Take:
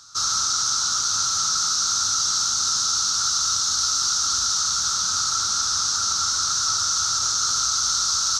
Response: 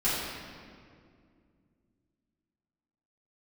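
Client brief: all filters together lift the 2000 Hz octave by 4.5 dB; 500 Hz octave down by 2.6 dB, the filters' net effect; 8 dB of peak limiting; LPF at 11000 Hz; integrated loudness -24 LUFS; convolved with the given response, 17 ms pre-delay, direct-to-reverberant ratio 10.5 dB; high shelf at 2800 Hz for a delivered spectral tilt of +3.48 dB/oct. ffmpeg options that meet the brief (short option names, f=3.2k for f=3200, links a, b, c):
-filter_complex "[0:a]lowpass=11k,equalizer=f=500:t=o:g=-4,equalizer=f=2k:t=o:g=6,highshelf=f=2.8k:g=5.5,alimiter=limit=-13dB:level=0:latency=1,asplit=2[a][b];[1:a]atrim=start_sample=2205,adelay=17[c];[b][c]afir=irnorm=-1:irlink=0,volume=-22dB[d];[a][d]amix=inputs=2:normalize=0,volume=-5dB"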